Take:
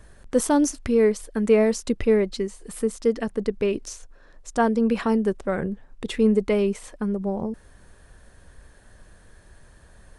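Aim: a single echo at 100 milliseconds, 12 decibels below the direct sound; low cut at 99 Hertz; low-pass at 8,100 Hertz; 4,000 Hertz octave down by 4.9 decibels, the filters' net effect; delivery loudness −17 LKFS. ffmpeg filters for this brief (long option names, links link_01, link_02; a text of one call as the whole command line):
ffmpeg -i in.wav -af "highpass=99,lowpass=8100,equalizer=frequency=4000:width_type=o:gain=-6.5,aecho=1:1:100:0.251,volume=6.5dB" out.wav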